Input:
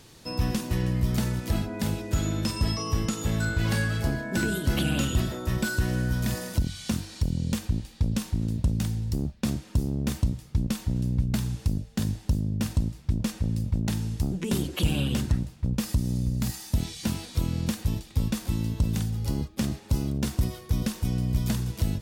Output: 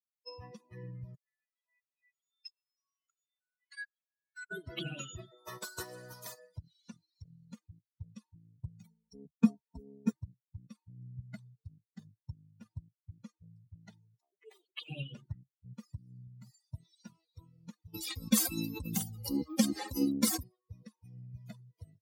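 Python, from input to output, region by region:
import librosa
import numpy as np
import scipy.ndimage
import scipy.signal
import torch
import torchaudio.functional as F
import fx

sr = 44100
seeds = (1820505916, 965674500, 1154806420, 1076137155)

y = fx.chain(x, sr, fx.highpass(hz=1500.0, slope=12),
    fx.level_steps(step_db=17), at=(1.15, 4.51))
y = fx.spec_flatten(y, sr, power=0.62, at=(5.36, 6.37), fade=0.02)
y = fx.peak_eq(y, sr, hz=2200.0, db=-5.0, octaves=0.85, at=(5.36, 6.37), fade=0.02)
y = fx.chain(y, sr, fx.comb(ms=4.4, depth=0.93),
    fx.dynamic_eq(hz=3200.0, q=0.74, threshold_db=-44.0, ratio=4.0, max_db=-3), at=(8.84, 10.12))
y = fx.chain(y, sr, fx.highpass(hz=560.0, slope=12),
    fx.doppler_dist(depth_ms=0.27), at=(14.18, 14.88))
y = fx.chain(y, sr, fx.high_shelf(hz=6700.0, db=10.5),
    fx.comb(ms=3.8, depth=0.57),
    fx.env_flatten(amount_pct=70), at=(17.94, 20.43))
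y = fx.bin_expand(y, sr, power=3.0)
y = scipy.signal.sosfilt(scipy.signal.butter(2, 160.0, 'highpass', fs=sr, output='sos'), y)
y = fx.upward_expand(y, sr, threshold_db=-50.0, expansion=1.5)
y = y * 10.0 ** (3.5 / 20.0)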